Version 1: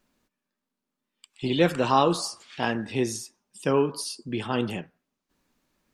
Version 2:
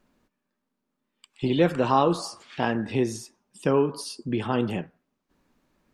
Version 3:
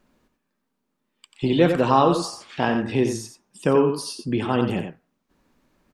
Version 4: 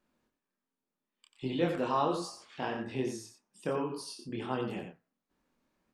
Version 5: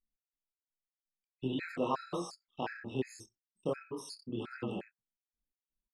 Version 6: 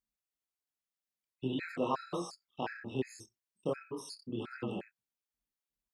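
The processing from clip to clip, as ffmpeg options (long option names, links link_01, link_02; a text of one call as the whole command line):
ffmpeg -i in.wav -filter_complex "[0:a]highshelf=frequency=2500:gain=-9.5,asplit=2[link_01][link_02];[link_02]acompressor=threshold=-30dB:ratio=6,volume=2dB[link_03];[link_01][link_03]amix=inputs=2:normalize=0,volume=-1.5dB" out.wav
ffmpeg -i in.wav -af "aecho=1:1:90:0.422,volume=3dB" out.wav
ffmpeg -i in.wav -af "lowshelf=frequency=140:gain=-6.5,flanger=delay=22.5:depth=5.7:speed=1.3,volume=-8.5dB" out.wav
ffmpeg -i in.wav -af "anlmdn=0.0158,afftfilt=real='re*gt(sin(2*PI*2.8*pts/sr)*(1-2*mod(floor(b*sr/1024/1300),2)),0)':imag='im*gt(sin(2*PI*2.8*pts/sr)*(1-2*mod(floor(b*sr/1024/1300),2)),0)':win_size=1024:overlap=0.75" out.wav
ffmpeg -i in.wav -af "highpass=43" out.wav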